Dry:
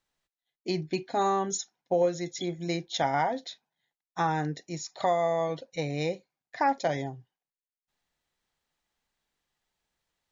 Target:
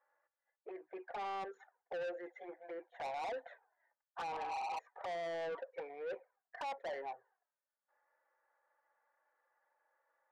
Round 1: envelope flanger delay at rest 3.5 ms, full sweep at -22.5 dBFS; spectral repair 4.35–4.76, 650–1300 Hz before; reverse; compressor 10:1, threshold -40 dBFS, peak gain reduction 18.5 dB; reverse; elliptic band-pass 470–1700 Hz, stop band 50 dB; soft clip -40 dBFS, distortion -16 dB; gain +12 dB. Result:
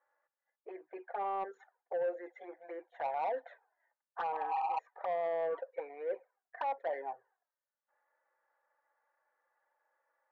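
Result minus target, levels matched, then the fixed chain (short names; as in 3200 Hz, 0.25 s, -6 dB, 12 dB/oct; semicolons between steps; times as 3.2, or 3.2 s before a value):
soft clip: distortion -9 dB
envelope flanger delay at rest 3.5 ms, full sweep at -22.5 dBFS; spectral repair 4.35–4.76, 650–1300 Hz before; reverse; compressor 10:1, threshold -40 dBFS, peak gain reduction 18.5 dB; reverse; elliptic band-pass 470–1700 Hz, stop band 50 dB; soft clip -50 dBFS, distortion -7 dB; gain +12 dB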